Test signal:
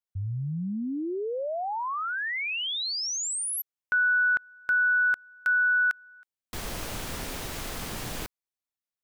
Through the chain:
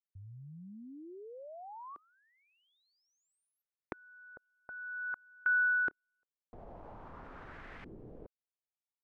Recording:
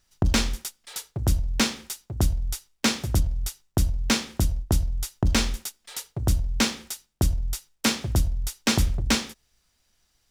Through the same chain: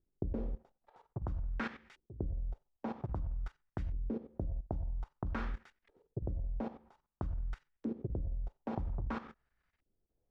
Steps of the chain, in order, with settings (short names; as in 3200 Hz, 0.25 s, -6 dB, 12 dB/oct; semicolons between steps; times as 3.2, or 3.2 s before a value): level quantiser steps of 14 dB; LFO low-pass saw up 0.51 Hz 350–2100 Hz; gain -7.5 dB